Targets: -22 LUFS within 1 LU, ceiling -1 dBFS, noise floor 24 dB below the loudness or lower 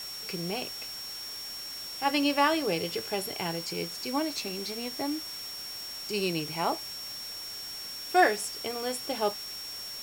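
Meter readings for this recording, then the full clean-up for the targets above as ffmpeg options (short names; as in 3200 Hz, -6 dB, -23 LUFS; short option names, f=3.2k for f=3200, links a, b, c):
steady tone 5500 Hz; tone level -38 dBFS; noise floor -40 dBFS; noise floor target -55 dBFS; loudness -31.0 LUFS; peak -9.0 dBFS; loudness target -22.0 LUFS
-> -af "bandreject=f=5.5k:w=30"
-af "afftdn=nr=15:nf=-40"
-af "volume=9dB,alimiter=limit=-1dB:level=0:latency=1"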